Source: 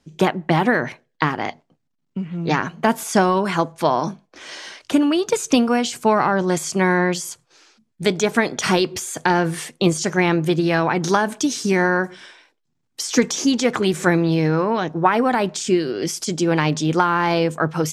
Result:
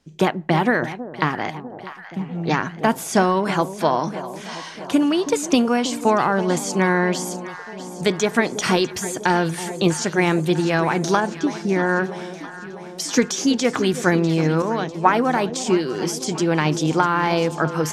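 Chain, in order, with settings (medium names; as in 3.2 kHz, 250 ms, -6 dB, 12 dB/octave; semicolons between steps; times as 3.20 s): 11.20–11.89 s: tape spacing loss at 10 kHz 23 dB; echo whose repeats swap between lows and highs 324 ms, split 880 Hz, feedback 77%, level -12 dB; 14.62–15.50 s: three bands expanded up and down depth 70%; trim -1 dB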